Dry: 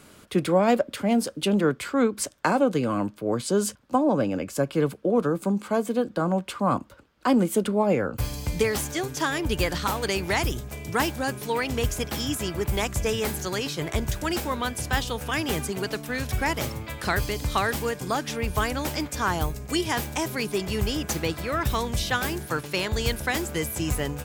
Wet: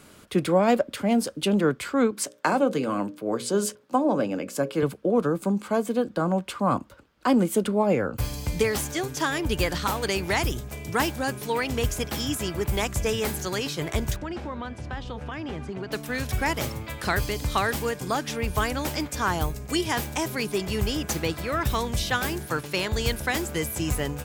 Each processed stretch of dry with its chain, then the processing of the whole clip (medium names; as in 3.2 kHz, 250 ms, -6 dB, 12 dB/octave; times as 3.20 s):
2.11–4.83 s: high-pass 170 Hz + hum notches 60/120/180/240/300/360/420/480/540/600 Hz
14.16–15.92 s: band-stop 450 Hz, Q 15 + compression 3:1, threshold -28 dBFS + tape spacing loss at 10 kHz 26 dB
whole clip: none